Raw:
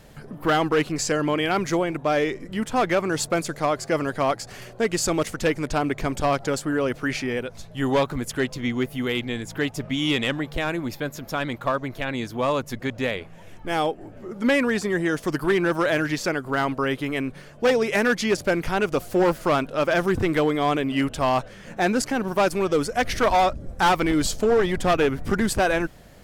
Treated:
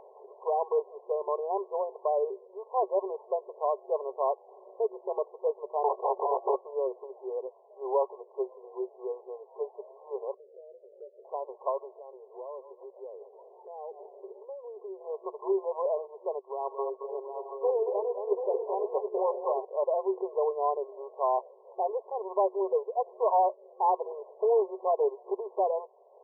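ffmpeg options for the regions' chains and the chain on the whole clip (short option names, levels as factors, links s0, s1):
-filter_complex "[0:a]asettb=1/sr,asplit=3[s0][s1][s2];[s0]atrim=end=5.834[s3];[s1]atrim=start=5.83:end=6.56,asetpts=PTS-STARTPTS,afade=t=in:d=0.004:c=qsin,afade=t=out:st=0.726:d=0.004:c=qsin,agate=range=0.178:threshold=0.0316:ratio=16:release=100:detection=peak,aeval=exprs='0.2*sin(PI/2*4.47*val(0)/0.2)':c=same[s4];[s2]atrim=start=6.556[s5];[s3][s4]acrossfade=d=0.004:c1=hsin:c2=qsin[s6];[s6][s5]acrossfade=d=0.004:c1=qsin:c2=hsin,asettb=1/sr,asplit=3[s7][s8][s9];[s7]atrim=end=10.344[s10];[s8]atrim=start=10.34:end=11.25,asetpts=PTS-STARTPTS,afade=t=in:d=0.004:c=qsin,afade=t=out:st=0.906:d=0.004:c=qsin,acompressor=threshold=0.0251:ratio=6:attack=3.2:release=140:knee=1:detection=peak,asuperpass=centerf=470:order=8:qfactor=2,asplit=2[s11][s12];[s12]adelay=24,volume=0.211[s13];[s11][s13]amix=inputs=2:normalize=0,atrim=end_sample=40131[s14];[s9]atrim=start=11.246[s15];[s10][s14]acrossfade=d=0.004:c1=hsin:c2=qsin[s16];[s16][s15]acrossfade=d=0.004:c1=qsin:c2=hsin,asettb=1/sr,asplit=3[s17][s18][s19];[s17]atrim=end=11.964[s20];[s18]atrim=start=11.96:end=15.01,asetpts=PTS-STARTPTS,afade=t=in:d=0.004:c=qsin,afade=t=out:st=3.046:d=0.004:c=qsin,asplit=4[s21][s22][s23][s24];[s22]adelay=150,afreqshift=-31,volume=0.0891[s25];[s23]adelay=300,afreqshift=-62,volume=0.0302[s26];[s24]adelay=450,afreqshift=-93,volume=0.0104[s27];[s21][s25][s26][s27]amix=inputs=4:normalize=0,atrim=end_sample=134505,acompressor=threshold=0.0224:ratio=5:attack=3.2:release=140:knee=1:detection=peak,tiltshelf=f=670:g=5.5[s28];[s19]atrim=start=15.006[s29];[s20][s28]acrossfade=d=0.004:c1=hsin:c2=qsin[s30];[s30][s29]acrossfade=d=0.004:c1=qsin:c2=hsin,asettb=1/sr,asplit=3[s31][s32][s33];[s31]atrim=end=16.394[s34];[s32]atrim=start=16.39:end=19.65,asetpts=PTS-STARTPTS,afade=t=in:d=0.004:c=qsin,afade=t=out:st=3.256:d=0.004:c=qsin,agate=range=0.355:threshold=0.0251:ratio=16:release=100:detection=peak,tremolo=f=2.7:d=0.29,aecho=1:1:223|504|734|830|867:0.447|0.178|0.398|0.282|0.237,atrim=end_sample=143766[s35];[s33]atrim=start=19.646[s36];[s34][s35]acrossfade=d=0.004:c1=hsin:c2=qsin[s37];[s37][s36]acrossfade=d=0.004:c1=qsin:c2=hsin,afftfilt=real='re*between(b*sr/4096,370,1100)':imag='im*between(b*sr/4096,370,1100)':win_size=4096:overlap=0.75,acompressor=mode=upward:threshold=0.00891:ratio=2.5,volume=0.596"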